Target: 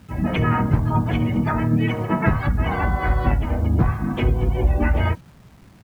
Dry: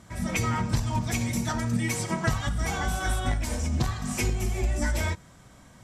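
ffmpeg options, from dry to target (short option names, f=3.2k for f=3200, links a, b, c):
-filter_complex "[0:a]lowpass=1.7k,afftdn=nr=14:nf=-43,acontrast=31,asplit=3[a][b][c];[b]asetrate=35002,aresample=44100,atempo=1.25992,volume=-15dB[d];[c]asetrate=58866,aresample=44100,atempo=0.749154,volume=-5dB[e];[a][d][e]amix=inputs=3:normalize=0,acrusher=bits=8:mix=0:aa=0.000001,volume=1.5dB"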